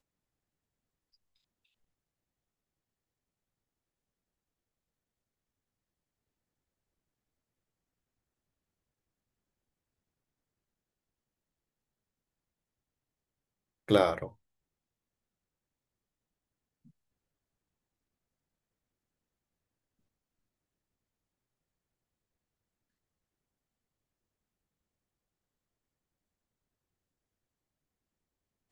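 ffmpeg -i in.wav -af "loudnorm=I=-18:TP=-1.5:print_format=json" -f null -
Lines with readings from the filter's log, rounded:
"input_i" : "-28.3",
"input_tp" : "-9.6",
"input_lra" : "4.5",
"input_thresh" : "-41.6",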